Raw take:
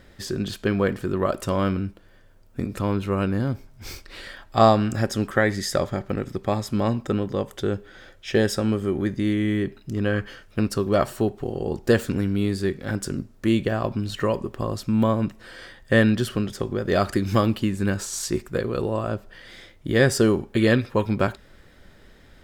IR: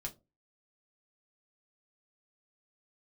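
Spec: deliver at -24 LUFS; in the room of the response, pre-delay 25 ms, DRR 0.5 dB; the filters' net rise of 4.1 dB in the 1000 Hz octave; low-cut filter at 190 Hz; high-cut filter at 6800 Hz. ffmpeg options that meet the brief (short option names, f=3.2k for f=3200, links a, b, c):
-filter_complex "[0:a]highpass=190,lowpass=6.8k,equalizer=f=1k:t=o:g=5.5,asplit=2[a][b];[1:a]atrim=start_sample=2205,adelay=25[c];[b][c]afir=irnorm=-1:irlink=0,volume=1dB[d];[a][d]amix=inputs=2:normalize=0,volume=-2.5dB"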